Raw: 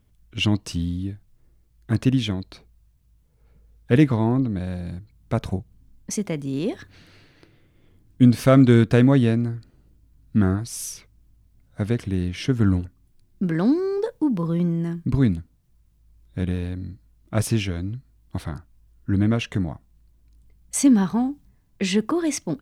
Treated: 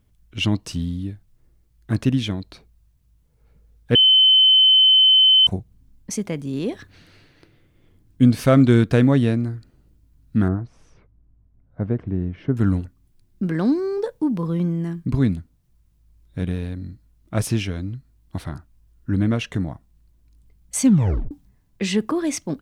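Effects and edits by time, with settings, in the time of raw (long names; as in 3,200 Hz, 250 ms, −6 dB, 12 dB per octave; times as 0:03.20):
0:03.95–0:05.47: beep over 3,060 Hz −10 dBFS
0:10.48–0:12.57: low-pass filter 1,100 Hz
0:20.83: tape stop 0.48 s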